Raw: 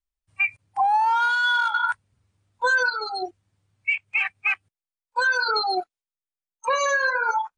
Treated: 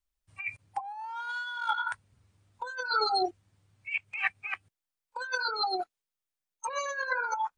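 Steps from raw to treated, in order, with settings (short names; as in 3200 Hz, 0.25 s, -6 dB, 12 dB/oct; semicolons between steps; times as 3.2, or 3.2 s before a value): negative-ratio compressor -27 dBFS, ratio -0.5; gain -3.5 dB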